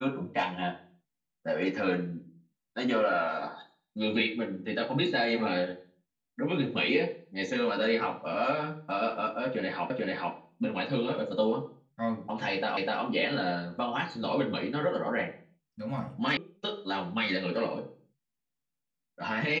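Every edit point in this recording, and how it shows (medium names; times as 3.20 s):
9.90 s: repeat of the last 0.44 s
12.77 s: repeat of the last 0.25 s
16.37 s: sound stops dead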